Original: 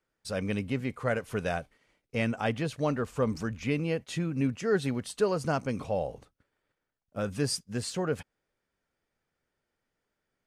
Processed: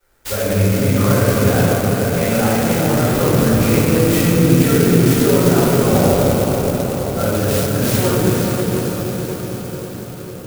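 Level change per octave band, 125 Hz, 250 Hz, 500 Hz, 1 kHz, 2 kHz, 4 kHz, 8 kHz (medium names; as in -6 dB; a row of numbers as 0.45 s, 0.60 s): +19.5 dB, +17.5 dB, +15.5 dB, +15.0 dB, +13.0 dB, +15.0 dB, +19.5 dB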